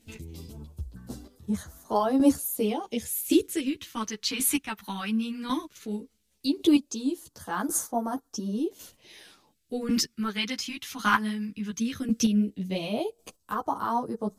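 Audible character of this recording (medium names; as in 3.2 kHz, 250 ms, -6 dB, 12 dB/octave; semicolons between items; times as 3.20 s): phasing stages 2, 0.16 Hz, lowest notch 540–2400 Hz; chopped level 0.91 Hz, depth 65%, duty 15%; a shimmering, thickened sound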